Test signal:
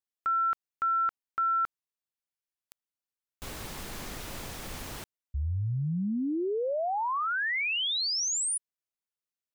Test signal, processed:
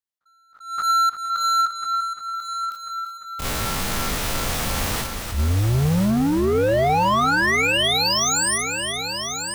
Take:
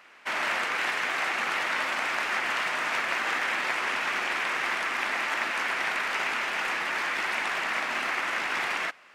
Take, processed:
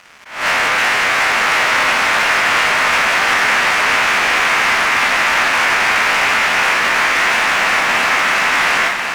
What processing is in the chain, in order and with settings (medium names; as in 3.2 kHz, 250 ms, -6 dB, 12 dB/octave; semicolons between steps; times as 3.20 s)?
spectrogram pixelated in time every 50 ms; peaking EQ 340 Hz -5 dB 0.51 oct; waveshaping leveller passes 3; multi-head delay 347 ms, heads first and third, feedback 61%, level -9.5 dB; attacks held to a fixed rise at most 120 dB/s; trim +6.5 dB